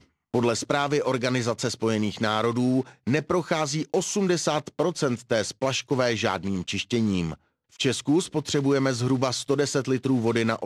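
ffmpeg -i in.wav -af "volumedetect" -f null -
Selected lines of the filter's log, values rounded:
mean_volume: -25.2 dB
max_volume: -8.1 dB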